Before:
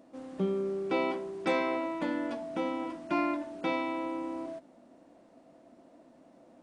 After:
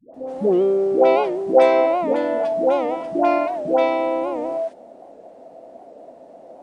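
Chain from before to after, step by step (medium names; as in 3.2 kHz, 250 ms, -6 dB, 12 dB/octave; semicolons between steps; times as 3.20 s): high-order bell 580 Hz +12.5 dB 1.3 oct; phase dispersion highs, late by 144 ms, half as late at 530 Hz; warped record 78 rpm, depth 160 cents; trim +6 dB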